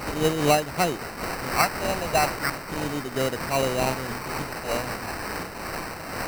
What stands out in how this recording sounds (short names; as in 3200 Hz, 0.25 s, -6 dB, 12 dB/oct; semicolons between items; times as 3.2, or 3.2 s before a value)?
a quantiser's noise floor 6-bit, dither triangular; phasing stages 4, 0.38 Hz, lowest notch 290–3200 Hz; aliases and images of a low sample rate 3400 Hz, jitter 0%; noise-modulated level